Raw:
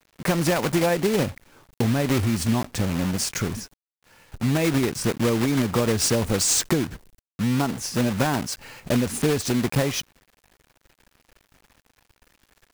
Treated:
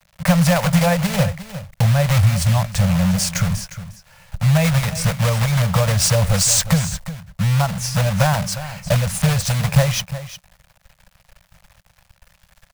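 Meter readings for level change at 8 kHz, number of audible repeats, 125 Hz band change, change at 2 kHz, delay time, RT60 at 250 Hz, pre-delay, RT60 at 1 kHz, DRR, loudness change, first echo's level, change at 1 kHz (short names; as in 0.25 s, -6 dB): +5.0 dB, 1, +10.5 dB, +5.0 dB, 0.357 s, none, none, none, none, +5.5 dB, -13.5 dB, +5.5 dB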